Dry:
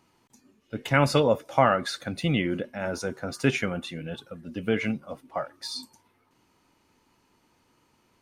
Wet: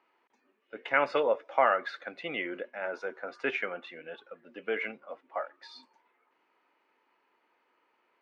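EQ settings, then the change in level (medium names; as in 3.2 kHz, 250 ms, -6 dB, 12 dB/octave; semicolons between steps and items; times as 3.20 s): Chebyshev band-pass 420–2100 Hz, order 2; distance through air 60 m; tilt EQ +2 dB/octave; -2.0 dB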